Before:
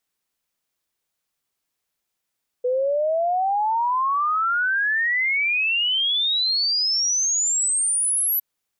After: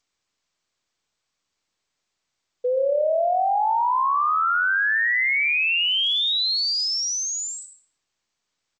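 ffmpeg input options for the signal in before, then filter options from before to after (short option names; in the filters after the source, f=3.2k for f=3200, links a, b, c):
-f lavfi -i "aevalsrc='0.119*clip(min(t,5.76-t)/0.01,0,1)*sin(2*PI*490*5.76/log(12000/490)*(exp(log(12000/490)*t/5.76)-1))':d=5.76:s=44100"
-filter_complex "[0:a]lowpass=5.2k,asplit=2[a][b];[b]adelay=115,lowpass=f=2.6k:p=1,volume=-8dB,asplit=2[c][d];[d]adelay=115,lowpass=f=2.6k:p=1,volume=0.45,asplit=2[e][f];[f]adelay=115,lowpass=f=2.6k:p=1,volume=0.45,asplit=2[g][h];[h]adelay=115,lowpass=f=2.6k:p=1,volume=0.45,asplit=2[i][j];[j]adelay=115,lowpass=f=2.6k:p=1,volume=0.45[k];[c][e][g][i][k]amix=inputs=5:normalize=0[l];[a][l]amix=inputs=2:normalize=0" -ar 16000 -c:a g722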